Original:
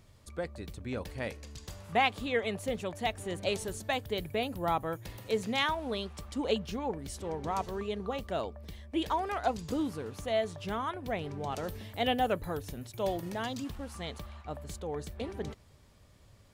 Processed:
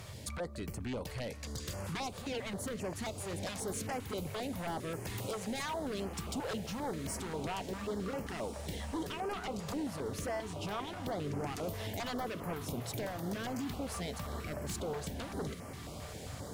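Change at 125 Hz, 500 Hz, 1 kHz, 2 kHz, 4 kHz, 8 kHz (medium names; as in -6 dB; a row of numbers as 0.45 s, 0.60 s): +0.5 dB, -5.5 dB, -7.5 dB, -6.5 dB, -5.5 dB, +4.0 dB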